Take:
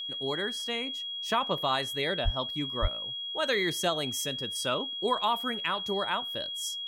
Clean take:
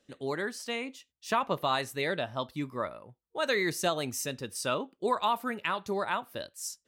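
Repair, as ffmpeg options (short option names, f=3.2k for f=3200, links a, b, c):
-filter_complex "[0:a]bandreject=f=3.3k:w=30,asplit=3[a][b][c];[a]afade=t=out:st=2.24:d=0.02[d];[b]highpass=f=140:w=0.5412,highpass=f=140:w=1.3066,afade=t=in:st=2.24:d=0.02,afade=t=out:st=2.36:d=0.02[e];[c]afade=t=in:st=2.36:d=0.02[f];[d][e][f]amix=inputs=3:normalize=0,asplit=3[g][h][i];[g]afade=t=out:st=2.81:d=0.02[j];[h]highpass=f=140:w=0.5412,highpass=f=140:w=1.3066,afade=t=in:st=2.81:d=0.02,afade=t=out:st=2.93:d=0.02[k];[i]afade=t=in:st=2.93:d=0.02[l];[j][k][l]amix=inputs=3:normalize=0"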